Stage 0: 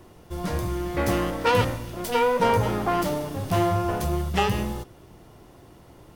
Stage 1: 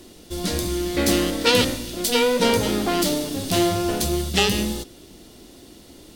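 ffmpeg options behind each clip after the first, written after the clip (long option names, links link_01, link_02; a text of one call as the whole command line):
ffmpeg -i in.wav -af "equalizer=frequency=125:width_type=o:width=1:gain=-10,equalizer=frequency=250:width_type=o:width=1:gain=8,equalizer=frequency=1000:width_type=o:width=1:gain=-8,equalizer=frequency=4000:width_type=o:width=1:gain=11,equalizer=frequency=8000:width_type=o:width=1:gain=7,equalizer=frequency=16000:width_type=o:width=1:gain=6,volume=2.5dB" out.wav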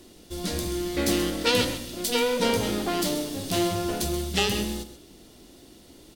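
ffmpeg -i in.wav -af "aecho=1:1:131:0.251,volume=-5dB" out.wav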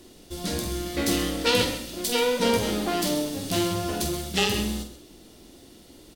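ffmpeg -i in.wav -filter_complex "[0:a]asplit=2[link_01][link_02];[link_02]adelay=47,volume=-7.5dB[link_03];[link_01][link_03]amix=inputs=2:normalize=0" out.wav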